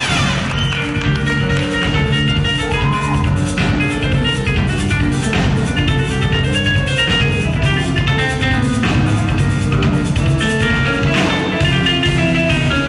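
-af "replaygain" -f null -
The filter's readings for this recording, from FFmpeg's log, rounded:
track_gain = -2.1 dB
track_peak = 0.322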